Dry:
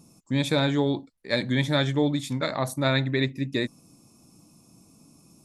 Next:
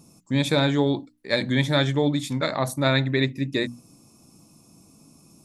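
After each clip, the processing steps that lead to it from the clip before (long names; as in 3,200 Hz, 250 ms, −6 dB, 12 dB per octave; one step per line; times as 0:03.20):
mains-hum notches 60/120/180/240/300 Hz
level +2.5 dB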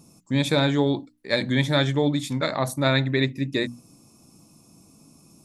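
no processing that can be heard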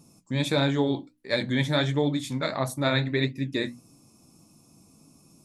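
flanger 1.5 Hz, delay 6.5 ms, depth 6.9 ms, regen −58%
level +1 dB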